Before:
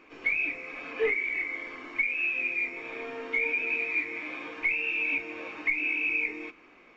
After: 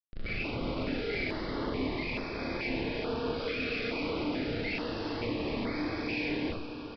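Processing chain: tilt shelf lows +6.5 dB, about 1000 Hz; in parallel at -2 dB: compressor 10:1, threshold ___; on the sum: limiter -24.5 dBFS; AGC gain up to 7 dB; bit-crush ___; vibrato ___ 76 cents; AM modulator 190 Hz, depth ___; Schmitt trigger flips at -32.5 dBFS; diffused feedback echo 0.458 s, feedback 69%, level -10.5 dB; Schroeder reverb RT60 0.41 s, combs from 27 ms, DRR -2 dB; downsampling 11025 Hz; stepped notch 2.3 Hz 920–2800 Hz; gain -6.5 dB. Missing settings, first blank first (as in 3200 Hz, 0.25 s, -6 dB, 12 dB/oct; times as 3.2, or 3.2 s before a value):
-44 dBFS, 11-bit, 7.9 Hz, 25%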